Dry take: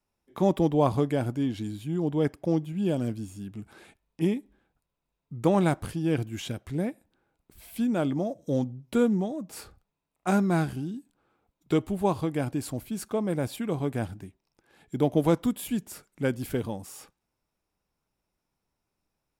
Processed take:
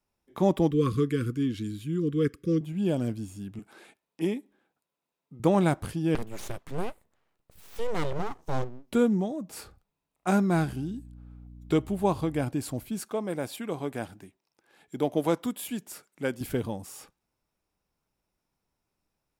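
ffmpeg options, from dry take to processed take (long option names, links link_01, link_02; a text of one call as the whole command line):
ffmpeg -i in.wav -filter_complex "[0:a]asettb=1/sr,asplit=3[link_01][link_02][link_03];[link_01]atrim=end=0.714[link_04];[link_02]atrim=start=0.71:end=2.61,asetpts=PTS-STARTPTS,afade=type=in:duration=0.004:curve=qsin,afade=type=out:start_time=1.896:duration=0.004:curve=qsin,asuperstop=centerf=740:order=20:qfactor=1.3[link_05];[link_03]atrim=start=2.606[link_06];[link_04][link_05]acrossfade=duration=0.004:curve1=hsin:curve2=qsin[link_07];[link_07][link_06]acrossfade=duration=0.004:curve1=qsin:curve2=hsin,asettb=1/sr,asplit=3[link_08][link_09][link_10];[link_08]atrim=end=3.594[link_11];[link_09]atrim=start=3.59:end=5.4,asetpts=PTS-STARTPTS,afade=type=in:duration=0.004:curve=qsin,afade=type=out:start_time=1.806:duration=0.004:curve=qsin,highpass=240[link_12];[link_10]atrim=start=5.396[link_13];[link_11][link_12]acrossfade=duration=0.004:curve1=hsin:curve2=qsin[link_14];[link_14][link_13]acrossfade=duration=0.004:curve1=qsin:curve2=hsin,asettb=1/sr,asplit=3[link_15][link_16][link_17];[link_15]atrim=end=6.154[link_18];[link_16]atrim=start=6.15:end=8.92,asetpts=PTS-STARTPTS,afade=type=in:duration=0.004:curve=qsin,afade=type=out:start_time=2.766:duration=0.004:curve=qsin,aeval=exprs='abs(val(0))':channel_layout=same[link_19];[link_17]atrim=start=8.916[link_20];[link_18][link_19]acrossfade=duration=0.004:curve1=hsin:curve2=qsin[link_21];[link_21][link_20]acrossfade=duration=0.004:curve1=qsin:curve2=hsin,asettb=1/sr,asplit=3[link_22][link_23][link_24];[link_22]atrim=end=10.554[link_25];[link_23]atrim=start=10.55:end=12.44,asetpts=PTS-STARTPTS,afade=type=in:duration=0.004:curve=qsin,afade=type=out:start_time=1.886:duration=0.004:curve=qsin,aeval=exprs='val(0)+0.00562*(sin(2*PI*60*n/s)+sin(2*PI*2*60*n/s)/2+sin(2*PI*3*60*n/s)/3+sin(2*PI*4*60*n/s)/4+sin(2*PI*5*60*n/s)/5)':channel_layout=same[link_26];[link_24]atrim=start=12.436[link_27];[link_25][link_26]acrossfade=duration=0.004:curve1=hsin:curve2=qsin[link_28];[link_28][link_27]acrossfade=duration=0.004:curve1=qsin:curve2=hsin,asettb=1/sr,asplit=3[link_29][link_30][link_31];[link_29]atrim=end=13.004[link_32];[link_30]atrim=start=13:end=16.41,asetpts=PTS-STARTPTS,afade=type=in:duration=0.004:curve=qsin,afade=type=out:start_time=3.406:duration=0.004:curve=qsin,highpass=frequency=350:poles=1[link_33];[link_31]atrim=start=16.406[link_34];[link_32][link_33]acrossfade=duration=0.004:curve1=hsin:curve2=qsin[link_35];[link_35][link_34]acrossfade=duration=0.004:curve1=qsin:curve2=hsin" out.wav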